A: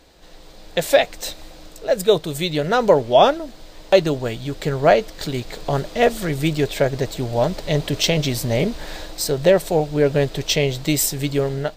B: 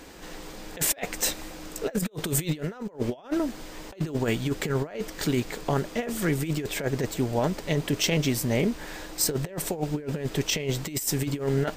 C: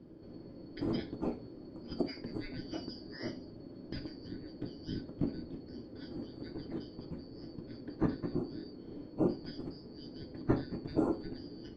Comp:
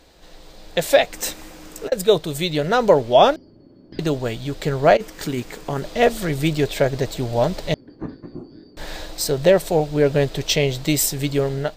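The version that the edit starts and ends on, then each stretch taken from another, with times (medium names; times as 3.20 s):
A
1.13–1.92 s: from B
3.36–3.99 s: from C
4.97–5.82 s: from B
7.74–8.77 s: from C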